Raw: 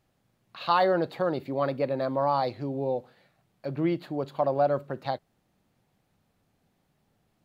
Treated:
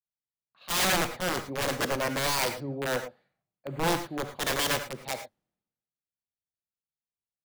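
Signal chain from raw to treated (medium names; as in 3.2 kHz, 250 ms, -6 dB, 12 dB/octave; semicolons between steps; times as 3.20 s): integer overflow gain 21.5 dB; gated-style reverb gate 130 ms rising, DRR 6.5 dB; three bands expanded up and down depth 100%; trim -1 dB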